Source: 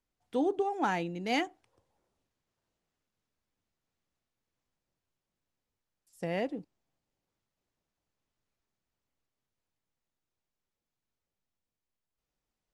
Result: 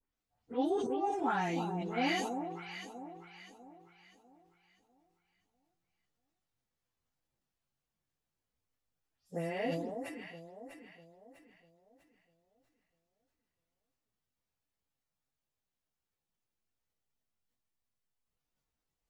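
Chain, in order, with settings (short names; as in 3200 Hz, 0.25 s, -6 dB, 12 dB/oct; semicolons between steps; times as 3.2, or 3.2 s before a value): spectral delay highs late, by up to 0.119 s; bell 370 Hz -3 dB 0.64 oct; plain phase-vocoder stretch 1.5×; on a send: echo with dull and thin repeats by turns 0.324 s, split 1000 Hz, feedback 61%, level -5.5 dB; on the sum: sustainer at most 42 dB/s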